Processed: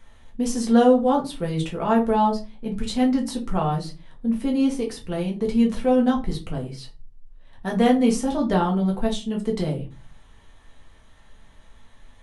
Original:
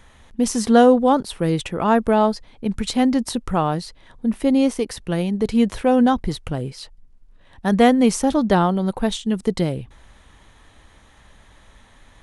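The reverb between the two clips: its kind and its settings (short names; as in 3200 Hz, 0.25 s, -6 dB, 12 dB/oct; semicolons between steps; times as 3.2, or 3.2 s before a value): shoebox room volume 120 m³, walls furnished, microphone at 1.6 m; gain -8.5 dB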